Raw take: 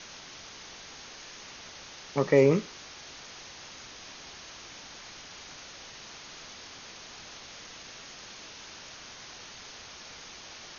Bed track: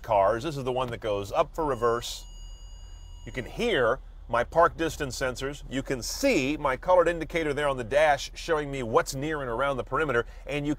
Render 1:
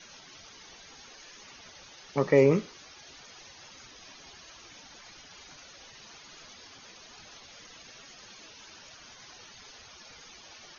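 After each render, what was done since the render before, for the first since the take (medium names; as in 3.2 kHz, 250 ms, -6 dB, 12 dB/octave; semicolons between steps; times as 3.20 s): noise reduction 12 dB, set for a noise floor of -47 dBFS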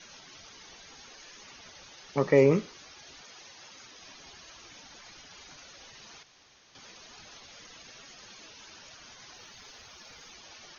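3.21–4.02 s: bass shelf 100 Hz -12 dB; 6.23–6.75 s: room tone; 9.35–10.33 s: short-mantissa float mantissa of 4-bit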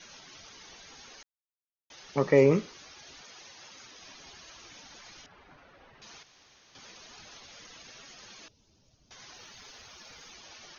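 1.23–1.90 s: mute; 5.26–6.02 s: low-pass 1.6 kHz; 8.48–9.11 s: FFT filter 100 Hz 0 dB, 610 Hz -15 dB, 1.6 kHz -29 dB, 4.9 kHz -18 dB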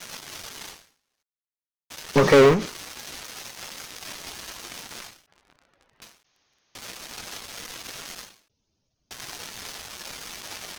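waveshaping leveller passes 5; endings held to a fixed fall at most 120 dB/s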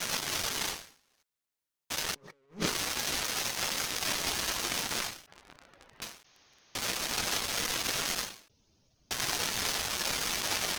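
compressor with a negative ratio -33 dBFS, ratio -0.5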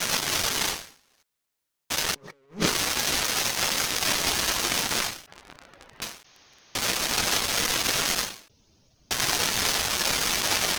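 trim +7 dB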